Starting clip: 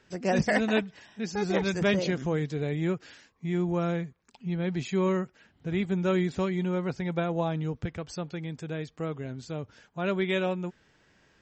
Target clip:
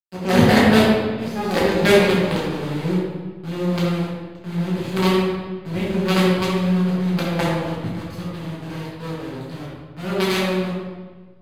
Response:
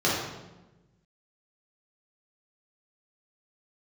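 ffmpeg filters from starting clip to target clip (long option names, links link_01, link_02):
-filter_complex "[0:a]aeval=exprs='0.211*(cos(1*acos(clip(val(0)/0.211,-1,1)))-cos(1*PI/2))+0.00168*(cos(2*acos(clip(val(0)/0.211,-1,1)))-cos(2*PI/2))+0.00841*(cos(7*acos(clip(val(0)/0.211,-1,1)))-cos(7*PI/2))':channel_layout=same,acrusher=bits=4:dc=4:mix=0:aa=0.000001[link_01];[1:a]atrim=start_sample=2205,asetrate=30429,aresample=44100[link_02];[link_01][link_02]afir=irnorm=-1:irlink=0,volume=-7dB"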